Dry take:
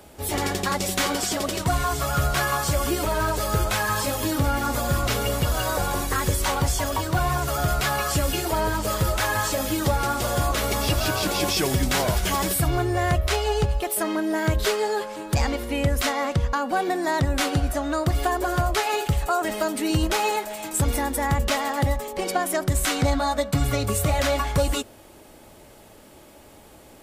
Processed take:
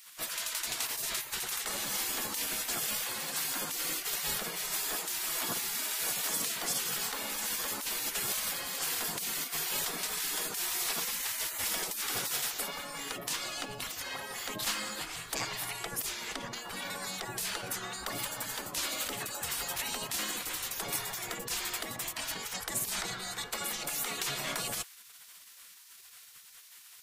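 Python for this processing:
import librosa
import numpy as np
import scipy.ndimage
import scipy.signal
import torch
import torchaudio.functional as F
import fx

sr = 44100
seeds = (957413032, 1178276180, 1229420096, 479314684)

p1 = fx.high_shelf(x, sr, hz=10000.0, db=3.0)
p2 = fx.over_compress(p1, sr, threshold_db=-28.0, ratio=-0.5)
p3 = p1 + F.gain(torch.from_numpy(p2), -3.0).numpy()
p4 = fx.spec_gate(p3, sr, threshold_db=-20, keep='weak')
y = F.gain(torch.from_numpy(p4), -3.5).numpy()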